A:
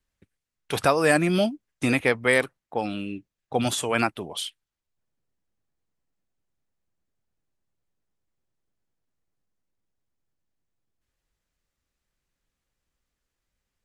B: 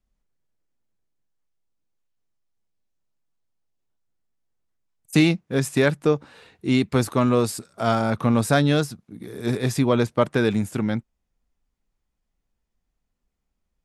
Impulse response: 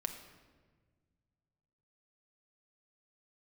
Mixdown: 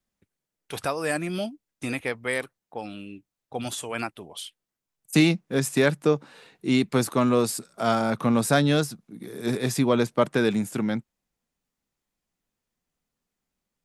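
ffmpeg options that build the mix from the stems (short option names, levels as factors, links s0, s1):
-filter_complex "[0:a]volume=0.422[s0];[1:a]highpass=f=130:w=0.5412,highpass=f=130:w=1.3066,volume=0.841[s1];[s0][s1]amix=inputs=2:normalize=0,highshelf=f=5800:g=4.5"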